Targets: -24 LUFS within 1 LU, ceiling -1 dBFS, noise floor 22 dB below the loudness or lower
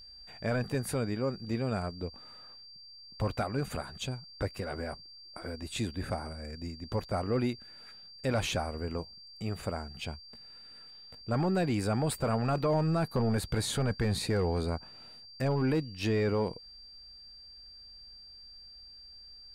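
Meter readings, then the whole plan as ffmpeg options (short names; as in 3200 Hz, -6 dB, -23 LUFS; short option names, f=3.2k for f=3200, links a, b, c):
steady tone 4700 Hz; tone level -49 dBFS; loudness -33.0 LUFS; peak -20.0 dBFS; loudness target -24.0 LUFS
-> -af "bandreject=f=4.7k:w=30"
-af "volume=9dB"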